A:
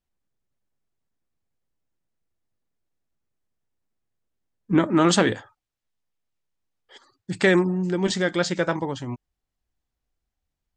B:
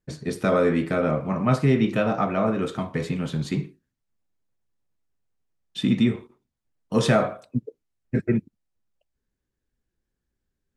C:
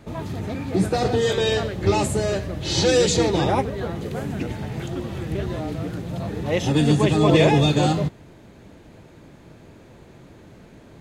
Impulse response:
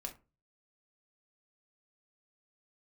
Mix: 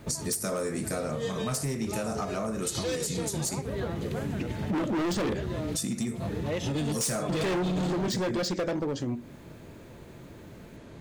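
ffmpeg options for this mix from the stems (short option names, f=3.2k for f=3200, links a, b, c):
-filter_complex "[0:a]deesser=0.55,equalizer=f=250:t=o:w=1:g=7,equalizer=f=500:t=o:w=1:g=5,equalizer=f=1k:t=o:w=1:g=-6,equalizer=f=8k:t=o:w=1:g=-9,aexciter=amount=2.3:drive=8:freq=4.5k,volume=1.5dB,asplit=2[a][b];[b]volume=-6dB[c];[1:a]aexciter=amount=15.8:drive=7.2:freq=5.1k,volume=-5.5dB,asplit=3[d][e][f];[e]volume=-7.5dB[g];[2:a]bandreject=f=770:w=12,volume=-0.5dB[h];[f]apad=whole_len=485265[i];[h][i]sidechaincompress=threshold=-37dB:ratio=8:attack=16:release=142[j];[3:a]atrim=start_sample=2205[k];[c][g]amix=inputs=2:normalize=0[l];[l][k]afir=irnorm=-1:irlink=0[m];[a][d][j][m]amix=inputs=4:normalize=0,volume=17dB,asoftclip=hard,volume=-17dB,acompressor=threshold=-28dB:ratio=6"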